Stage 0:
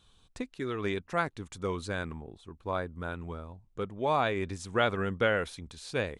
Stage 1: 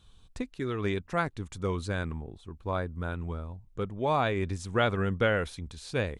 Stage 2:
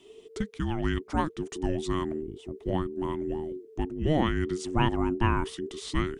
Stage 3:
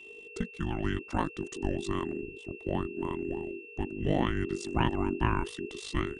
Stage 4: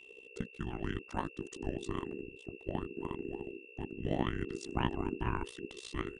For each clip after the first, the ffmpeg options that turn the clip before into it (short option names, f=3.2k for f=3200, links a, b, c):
-af "lowshelf=f=150:g=9"
-filter_complex "[0:a]asplit=2[a][b];[b]acompressor=threshold=-36dB:ratio=6,volume=-2dB[c];[a][c]amix=inputs=2:normalize=0,afreqshift=-460"
-af "aeval=exprs='val(0)*sin(2*PI*25*n/s)':c=same,aeval=exprs='val(0)+0.00447*sin(2*PI*2700*n/s)':c=same"
-af "tremolo=f=64:d=0.857,volume=-2.5dB"